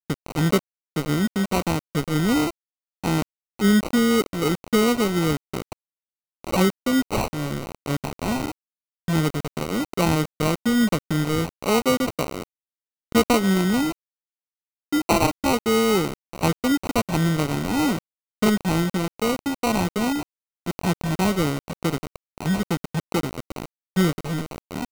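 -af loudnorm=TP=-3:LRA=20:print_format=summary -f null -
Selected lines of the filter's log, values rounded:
Input Integrated:    -23.6 LUFS
Input True Peak:      -5.4 dBTP
Input LRA:             5.1 LU
Input Threshold:     -34.0 LUFS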